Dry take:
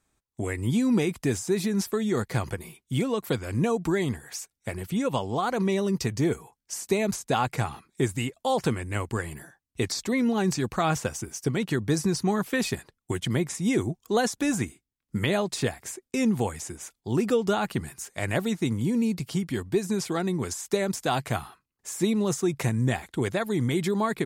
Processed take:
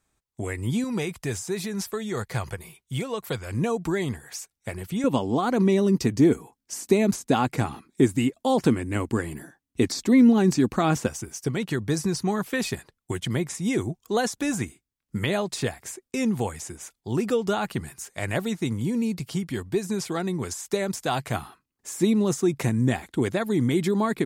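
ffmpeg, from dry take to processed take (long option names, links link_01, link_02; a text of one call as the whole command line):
ffmpeg -i in.wav -af "asetnsamples=nb_out_samples=441:pad=0,asendcmd='0.84 equalizer g -8.5;3.51 equalizer g -1.5;5.04 equalizer g 10.5;11.08 equalizer g -1;21.34 equalizer g 5.5',equalizer=frequency=270:width_type=o:width=0.98:gain=-2" out.wav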